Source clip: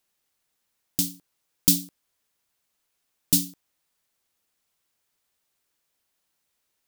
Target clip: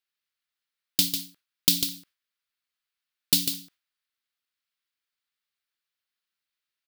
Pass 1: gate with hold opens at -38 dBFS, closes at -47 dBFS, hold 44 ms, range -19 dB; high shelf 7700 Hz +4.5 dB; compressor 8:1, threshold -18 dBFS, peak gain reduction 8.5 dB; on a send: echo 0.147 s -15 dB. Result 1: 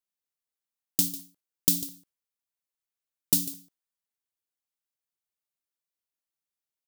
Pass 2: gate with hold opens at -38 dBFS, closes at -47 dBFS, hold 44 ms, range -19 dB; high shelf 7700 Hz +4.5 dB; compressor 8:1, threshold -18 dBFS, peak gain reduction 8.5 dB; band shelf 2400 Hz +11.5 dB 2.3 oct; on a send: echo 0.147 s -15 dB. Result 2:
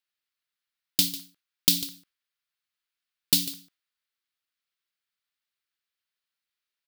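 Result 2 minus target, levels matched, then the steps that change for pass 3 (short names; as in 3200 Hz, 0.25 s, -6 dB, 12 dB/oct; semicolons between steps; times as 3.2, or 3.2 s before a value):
echo-to-direct -7.5 dB
change: echo 0.147 s -7.5 dB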